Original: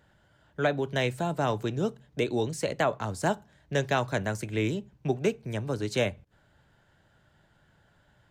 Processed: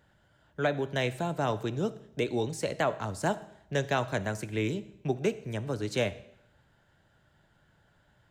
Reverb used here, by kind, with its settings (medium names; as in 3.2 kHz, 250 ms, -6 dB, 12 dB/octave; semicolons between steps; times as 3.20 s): algorithmic reverb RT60 0.77 s, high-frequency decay 0.95×, pre-delay 15 ms, DRR 16 dB; trim -2 dB